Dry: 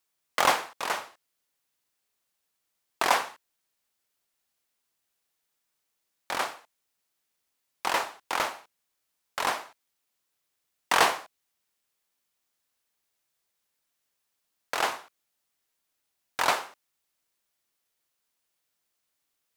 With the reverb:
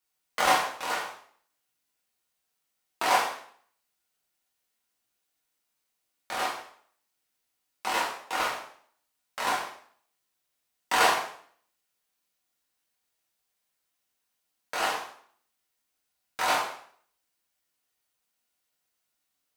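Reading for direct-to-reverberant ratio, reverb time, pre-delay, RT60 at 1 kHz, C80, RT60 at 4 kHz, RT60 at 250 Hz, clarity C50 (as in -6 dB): -5.0 dB, 0.55 s, 4 ms, 0.55 s, 9.0 dB, 0.50 s, 0.55 s, 4.5 dB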